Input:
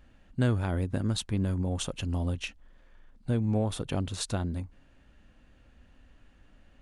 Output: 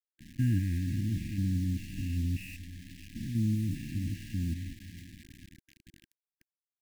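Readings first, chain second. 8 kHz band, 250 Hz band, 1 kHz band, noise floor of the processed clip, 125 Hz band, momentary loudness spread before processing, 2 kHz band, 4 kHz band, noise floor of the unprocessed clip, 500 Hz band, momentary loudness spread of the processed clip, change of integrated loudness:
-10.0 dB, -1.5 dB, under -40 dB, under -85 dBFS, -1.0 dB, 11 LU, -5.5 dB, -10.5 dB, -60 dBFS, under -20 dB, 17 LU, -2.0 dB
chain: spectrogram pixelated in time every 200 ms; brick-wall FIR low-pass 2.9 kHz; on a send: echo that smears into a reverb 543 ms, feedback 48%, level -15.5 dB; on the sum: bit crusher 8-bit; brick-wall FIR band-stop 340–1600 Hz

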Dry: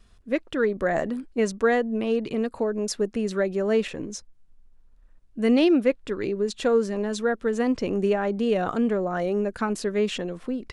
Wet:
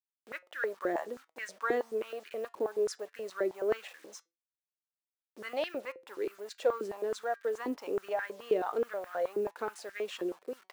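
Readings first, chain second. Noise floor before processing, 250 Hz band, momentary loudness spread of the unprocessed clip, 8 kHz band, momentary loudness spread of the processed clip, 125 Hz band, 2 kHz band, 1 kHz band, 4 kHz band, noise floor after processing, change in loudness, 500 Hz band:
-56 dBFS, -18.5 dB, 7 LU, -11.5 dB, 11 LU, under -20 dB, -8.0 dB, -6.5 dB, -11.0 dB, under -85 dBFS, -10.0 dB, -9.0 dB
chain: send-on-delta sampling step -41 dBFS; upward compressor, threshold -44 dBFS; flange 0.19 Hz, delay 5.2 ms, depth 2 ms, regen +85%; step-sequenced high-pass 9.4 Hz 350–1700 Hz; trim -7.5 dB

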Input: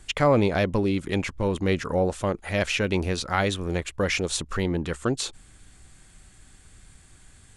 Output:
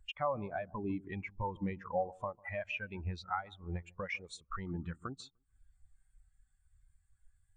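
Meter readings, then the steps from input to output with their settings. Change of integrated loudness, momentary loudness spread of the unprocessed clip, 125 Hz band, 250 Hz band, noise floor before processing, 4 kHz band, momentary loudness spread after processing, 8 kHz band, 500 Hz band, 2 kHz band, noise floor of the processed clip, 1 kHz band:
-14.5 dB, 7 LU, -15.0 dB, -16.0 dB, -53 dBFS, -19.0 dB, 7 LU, -25.5 dB, -15.5 dB, -13.5 dB, -75 dBFS, -9.0 dB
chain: resonant low shelf 630 Hz -8 dB, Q 1.5; compression 4:1, threshold -43 dBFS, peak gain reduction 20.5 dB; on a send: feedback echo behind a low-pass 149 ms, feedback 44%, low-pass 1.3 kHz, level -10 dB; on the sum: spectral contrast expander 2.5:1; trim +3 dB

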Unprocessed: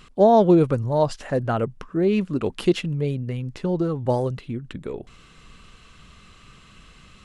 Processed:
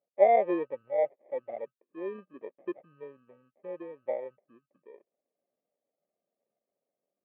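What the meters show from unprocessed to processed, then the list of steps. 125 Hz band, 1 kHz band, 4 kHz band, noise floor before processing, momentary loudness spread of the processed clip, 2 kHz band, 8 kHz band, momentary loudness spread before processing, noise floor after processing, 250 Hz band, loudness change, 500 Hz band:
-36.5 dB, -6.5 dB, under -25 dB, -51 dBFS, 24 LU, -8.0 dB, under -35 dB, 17 LU, under -85 dBFS, -18.5 dB, -8.5 dB, -8.0 dB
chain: sample-rate reducer 1.4 kHz, jitter 0%; cabinet simulation 410–2400 Hz, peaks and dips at 570 Hz +9 dB, 1 kHz -7 dB, 1.6 kHz -6 dB; spectral contrast expander 1.5:1; trim -7.5 dB

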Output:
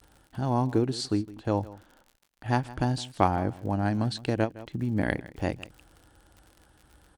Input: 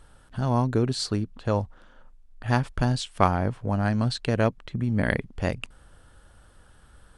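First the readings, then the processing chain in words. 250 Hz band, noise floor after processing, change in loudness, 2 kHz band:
-1.5 dB, -65 dBFS, -2.5 dB, -4.5 dB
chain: high-pass 42 Hz 12 dB/octave; gate -57 dBFS, range -22 dB; graphic EQ with 31 bands 315 Hz +10 dB, 800 Hz +6 dB, 1.25 kHz -3 dB; crackle 60 per s -38 dBFS; vibrato 0.46 Hz 11 cents; on a send: delay 161 ms -18.5 dB; on the sum: endings held to a fixed fall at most 330 dB/s; trim -4 dB

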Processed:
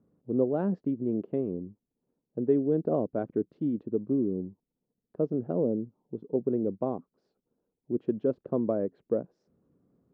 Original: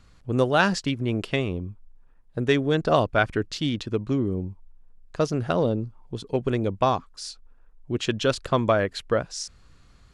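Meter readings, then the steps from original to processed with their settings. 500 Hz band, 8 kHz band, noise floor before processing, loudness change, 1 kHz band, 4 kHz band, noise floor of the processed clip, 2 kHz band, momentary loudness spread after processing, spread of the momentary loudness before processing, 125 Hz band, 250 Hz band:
-4.5 dB, under -40 dB, -54 dBFS, -5.0 dB, -16.0 dB, under -40 dB, under -85 dBFS, under -25 dB, 12 LU, 15 LU, -10.0 dB, -2.0 dB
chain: Butterworth band-pass 300 Hz, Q 0.92; trim -1.5 dB

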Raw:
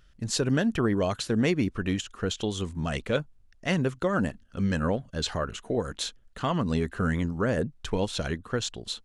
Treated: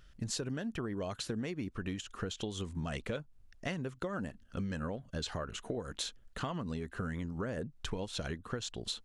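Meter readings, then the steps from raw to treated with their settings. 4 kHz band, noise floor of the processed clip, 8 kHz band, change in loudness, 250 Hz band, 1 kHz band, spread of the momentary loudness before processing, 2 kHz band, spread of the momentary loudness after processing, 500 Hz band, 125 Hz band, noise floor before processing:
-7.5 dB, -60 dBFS, -7.0 dB, -10.5 dB, -11.0 dB, -10.5 dB, 7 LU, -10.5 dB, 3 LU, -11.5 dB, -10.0 dB, -58 dBFS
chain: compression 12:1, threshold -34 dBFS, peak gain reduction 15 dB

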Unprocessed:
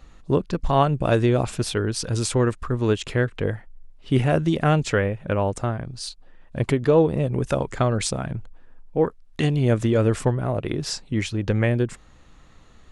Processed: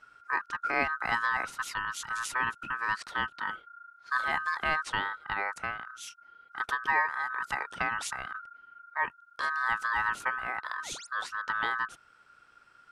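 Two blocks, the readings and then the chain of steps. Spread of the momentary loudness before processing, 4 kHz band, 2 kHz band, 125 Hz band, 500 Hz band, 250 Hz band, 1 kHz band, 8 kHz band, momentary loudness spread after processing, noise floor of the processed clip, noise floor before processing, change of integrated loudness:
9 LU, -7.5 dB, +4.0 dB, -31.5 dB, -23.0 dB, -25.5 dB, -1.5 dB, -9.5 dB, 11 LU, -61 dBFS, -50 dBFS, -8.5 dB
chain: painted sound rise, 10.83–11.07 s, 370–9100 Hz -35 dBFS; ring modulator 1.4 kHz; trim -7.5 dB

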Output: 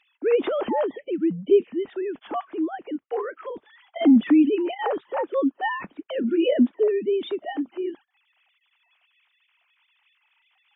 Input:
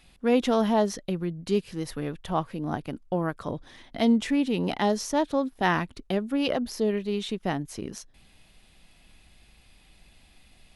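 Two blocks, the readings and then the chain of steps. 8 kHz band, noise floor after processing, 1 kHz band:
under -40 dB, -71 dBFS, -1.0 dB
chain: formants replaced by sine waves; peaking EQ 320 Hz +6.5 dB 0.79 oct; AAC 24 kbps 24 kHz

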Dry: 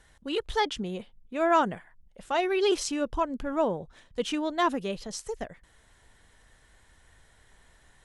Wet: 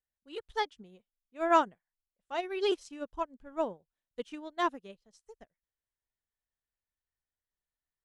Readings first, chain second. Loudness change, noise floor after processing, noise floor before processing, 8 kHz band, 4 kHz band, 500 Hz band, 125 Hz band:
-4.0 dB, under -85 dBFS, -61 dBFS, -16.0 dB, -8.0 dB, -6.0 dB, under -15 dB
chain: upward expansion 2.5:1, over -45 dBFS

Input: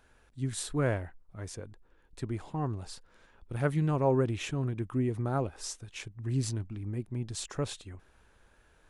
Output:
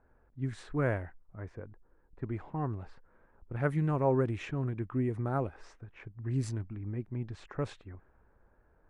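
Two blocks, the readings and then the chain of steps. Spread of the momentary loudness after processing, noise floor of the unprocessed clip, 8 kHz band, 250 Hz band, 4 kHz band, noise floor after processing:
20 LU, -64 dBFS, under -15 dB, -1.5 dB, -12.0 dB, -67 dBFS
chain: level-controlled noise filter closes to 940 Hz, open at -25.5 dBFS; resonant high shelf 2.6 kHz -6.5 dB, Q 1.5; trim -1.5 dB

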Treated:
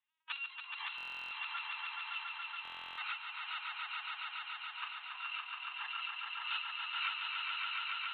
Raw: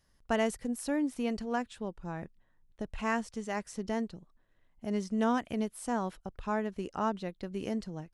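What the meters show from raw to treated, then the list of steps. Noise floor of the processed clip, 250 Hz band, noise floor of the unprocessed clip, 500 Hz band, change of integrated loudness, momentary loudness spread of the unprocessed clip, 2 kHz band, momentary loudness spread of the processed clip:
-51 dBFS, under -40 dB, -69 dBFS, under -35 dB, -5.0 dB, 11 LU, +3.0 dB, 6 LU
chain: bit-reversed sample order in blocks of 256 samples; recorder AGC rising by 38 dB/s; LPC vocoder at 8 kHz pitch kept; spectral noise reduction 13 dB; steep high-pass 850 Hz 72 dB/octave; on a send: echo with a slow build-up 141 ms, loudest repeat 5, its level -3.5 dB; on the sum: buffer glitch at 0.96/2.63 s, samples 1024, times 14; trim +3.5 dB

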